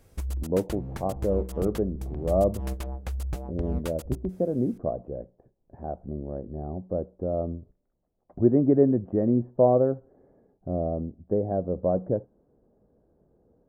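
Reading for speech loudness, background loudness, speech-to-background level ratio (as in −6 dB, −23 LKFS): −27.0 LKFS, −35.5 LKFS, 8.5 dB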